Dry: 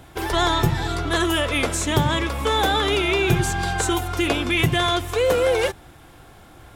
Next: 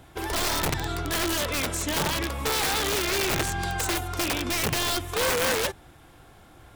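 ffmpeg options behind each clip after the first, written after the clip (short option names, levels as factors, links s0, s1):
-af "aeval=exprs='(mod(5.31*val(0)+1,2)-1)/5.31':c=same,volume=0.562"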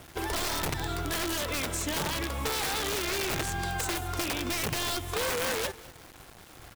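-af "acompressor=threshold=0.0398:ratio=6,acrusher=bits=7:mix=0:aa=0.000001,aecho=1:1:199|398|597:0.0891|0.041|0.0189"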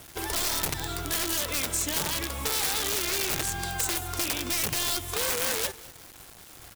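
-af "highshelf=f=4000:g=10,volume=0.794"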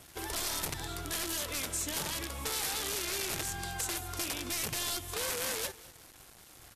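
-af "volume=0.501" -ar 32000 -c:a libvorbis -b:a 64k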